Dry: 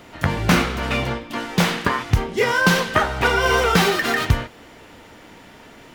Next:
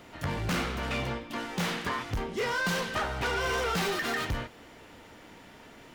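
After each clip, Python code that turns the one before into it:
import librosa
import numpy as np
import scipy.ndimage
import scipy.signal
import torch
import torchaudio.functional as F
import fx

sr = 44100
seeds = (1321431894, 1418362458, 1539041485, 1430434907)

y = 10.0 ** (-19.5 / 20.0) * np.tanh(x / 10.0 ** (-19.5 / 20.0))
y = y * 10.0 ** (-6.5 / 20.0)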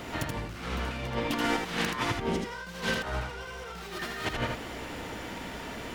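y = fx.over_compress(x, sr, threshold_db=-37.0, ratio=-0.5)
y = fx.dmg_buzz(y, sr, base_hz=60.0, harmonics=3, level_db=-56.0, tilt_db=-4, odd_only=False)
y = y + 10.0 ** (-4.0 / 20.0) * np.pad(y, (int(79 * sr / 1000.0), 0))[:len(y)]
y = y * 10.0 ** (4.0 / 20.0)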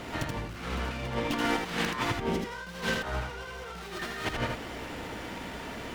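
y = fx.running_max(x, sr, window=3)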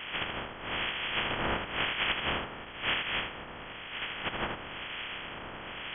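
y = fx.spec_flatten(x, sr, power=0.14)
y = fx.harmonic_tremolo(y, sr, hz=1.0, depth_pct=70, crossover_hz=2000.0)
y = fx.freq_invert(y, sr, carrier_hz=3300)
y = y * 10.0 ** (7.5 / 20.0)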